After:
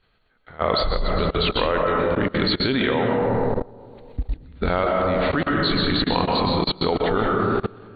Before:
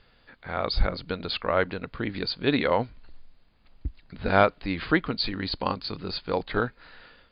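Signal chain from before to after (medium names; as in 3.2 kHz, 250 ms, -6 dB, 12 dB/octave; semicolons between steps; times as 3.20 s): level rider gain up to 14 dB; tape speed -8%; algorithmic reverb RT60 2.1 s, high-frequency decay 0.3×, pre-delay 85 ms, DRR -0.5 dB; level held to a coarse grid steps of 22 dB; trim +1.5 dB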